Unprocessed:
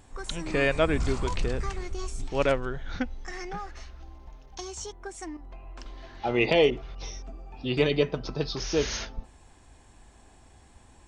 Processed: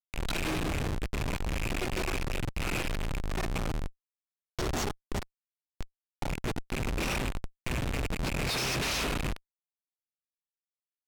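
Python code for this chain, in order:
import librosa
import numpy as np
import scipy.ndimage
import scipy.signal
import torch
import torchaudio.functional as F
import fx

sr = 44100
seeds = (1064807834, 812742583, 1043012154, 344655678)

y = fx.rattle_buzz(x, sr, strikes_db=-34.0, level_db=-17.0)
y = fx.over_compress(y, sr, threshold_db=-30.0, ratio=-0.5)
y = fx.hum_notches(y, sr, base_hz=50, count=3)
y = fx.rev_spring(y, sr, rt60_s=1.8, pass_ms=(38,), chirp_ms=70, drr_db=0.0)
y = fx.granulator(y, sr, seeds[0], grain_ms=100.0, per_s=28.0, spray_ms=26.0, spread_st=0)
y = fx.peak_eq(y, sr, hz=4100.0, db=11.5, octaves=2.2)
y = fx.quant_dither(y, sr, seeds[1], bits=10, dither='none')
y = fx.high_shelf(y, sr, hz=7300.0, db=10.5)
y = fx.schmitt(y, sr, flips_db=-24.0)
y = np.interp(np.arange(len(y)), np.arange(len(y))[::2], y[::2])
y = F.gain(torch.from_numpy(y), -2.5).numpy()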